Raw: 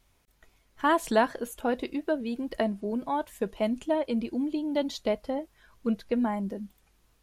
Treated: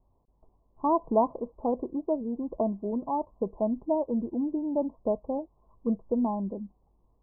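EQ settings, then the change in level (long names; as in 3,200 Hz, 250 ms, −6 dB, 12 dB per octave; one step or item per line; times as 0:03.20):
Butterworth low-pass 1,100 Hz 96 dB per octave
0.0 dB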